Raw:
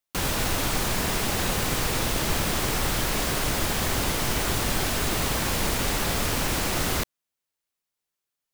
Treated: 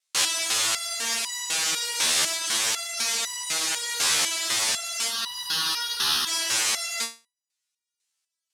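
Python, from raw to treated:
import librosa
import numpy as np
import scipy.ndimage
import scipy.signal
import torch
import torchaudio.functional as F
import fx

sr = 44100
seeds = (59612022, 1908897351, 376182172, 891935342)

y = fx.tube_stage(x, sr, drive_db=24.0, bias=0.45, at=(2.34, 2.97))
y = fx.fixed_phaser(y, sr, hz=2200.0, stages=6, at=(5.07, 6.27))
y = fx.vibrato(y, sr, rate_hz=2.4, depth_cents=23.0)
y = fx.weighting(y, sr, curve='ITU-R 468')
y = fx.rider(y, sr, range_db=10, speed_s=0.5)
y = fx.resonator_held(y, sr, hz=4.0, low_hz=78.0, high_hz=970.0)
y = y * 10.0 ** (8.0 / 20.0)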